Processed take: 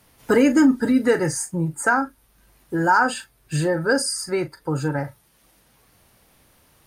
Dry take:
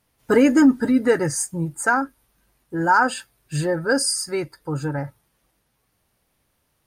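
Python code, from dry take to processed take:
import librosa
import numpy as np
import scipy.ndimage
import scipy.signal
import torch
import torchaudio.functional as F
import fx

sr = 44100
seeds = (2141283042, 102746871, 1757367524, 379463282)

y = fx.doubler(x, sr, ms=38.0, db=-13.0)
y = fx.band_squash(y, sr, depth_pct=40)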